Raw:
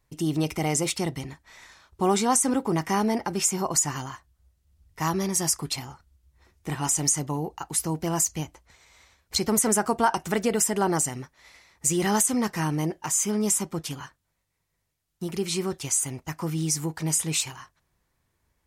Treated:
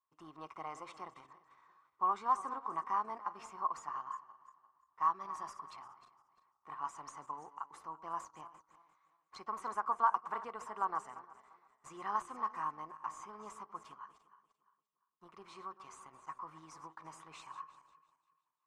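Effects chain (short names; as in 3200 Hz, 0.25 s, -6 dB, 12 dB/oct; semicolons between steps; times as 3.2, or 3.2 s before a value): regenerating reverse delay 0.173 s, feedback 57%, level -13 dB; differentiator; sample leveller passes 1; synth low-pass 1100 Hz, resonance Q 11; gain -4.5 dB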